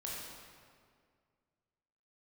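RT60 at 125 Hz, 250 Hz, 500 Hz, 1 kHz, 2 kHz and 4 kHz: 2.3, 2.3, 2.1, 1.9, 1.7, 1.4 s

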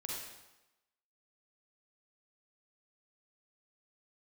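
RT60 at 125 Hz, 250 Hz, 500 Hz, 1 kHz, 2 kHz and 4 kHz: 0.90, 0.95, 0.95, 1.0, 0.95, 0.90 s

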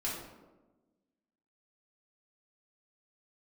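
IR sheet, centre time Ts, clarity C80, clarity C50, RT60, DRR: 57 ms, 5.0 dB, 2.0 dB, 1.2 s, -6.5 dB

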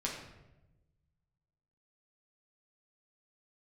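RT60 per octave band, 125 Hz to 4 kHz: 2.0, 1.4, 1.1, 0.85, 0.80, 0.65 s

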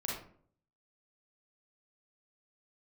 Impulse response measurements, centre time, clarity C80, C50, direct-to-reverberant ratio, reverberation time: 49 ms, 7.0 dB, 1.0 dB, -4.5 dB, 0.55 s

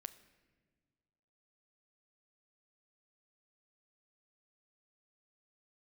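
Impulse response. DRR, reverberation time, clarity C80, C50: 11.5 dB, not exponential, 16.5 dB, 15.0 dB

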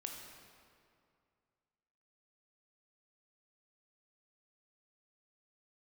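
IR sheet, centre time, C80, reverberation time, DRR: 73 ms, 4.0 dB, 2.3 s, 1.5 dB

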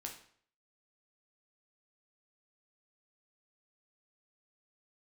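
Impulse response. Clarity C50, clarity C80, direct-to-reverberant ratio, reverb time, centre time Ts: 8.0 dB, 12.0 dB, 1.0 dB, 0.55 s, 22 ms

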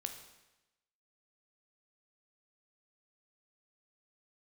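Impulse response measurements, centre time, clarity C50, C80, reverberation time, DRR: 19 ms, 8.0 dB, 10.5 dB, 1.0 s, 5.5 dB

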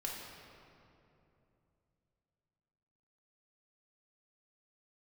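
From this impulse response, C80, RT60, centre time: 2.0 dB, 2.9 s, 0.108 s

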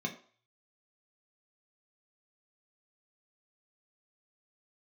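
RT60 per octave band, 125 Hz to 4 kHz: 0.60, 0.35, 0.45, 0.50, 0.45, 0.45 s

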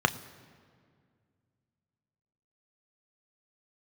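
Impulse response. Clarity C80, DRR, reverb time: 17.5 dB, 9.5 dB, 2.1 s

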